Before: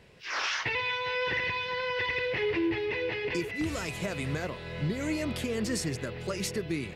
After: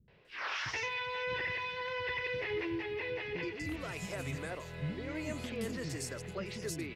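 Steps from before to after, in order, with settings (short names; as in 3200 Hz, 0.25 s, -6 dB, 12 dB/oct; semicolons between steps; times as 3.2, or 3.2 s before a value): three bands offset in time lows, mids, highs 80/250 ms, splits 270/4400 Hz; gain -5.5 dB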